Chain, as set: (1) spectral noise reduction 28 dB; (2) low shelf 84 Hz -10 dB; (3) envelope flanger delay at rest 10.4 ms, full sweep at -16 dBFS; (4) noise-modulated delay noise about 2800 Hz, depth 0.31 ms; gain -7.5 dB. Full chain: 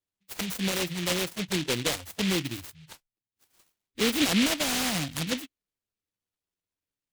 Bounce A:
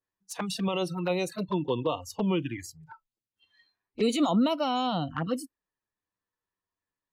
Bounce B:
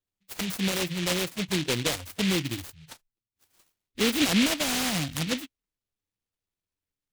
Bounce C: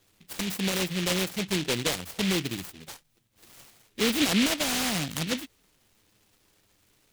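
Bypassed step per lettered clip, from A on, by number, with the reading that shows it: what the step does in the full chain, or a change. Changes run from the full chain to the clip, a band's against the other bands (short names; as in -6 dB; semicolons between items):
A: 4, 8 kHz band -12.0 dB; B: 2, 125 Hz band +1.5 dB; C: 1, momentary loudness spread change +2 LU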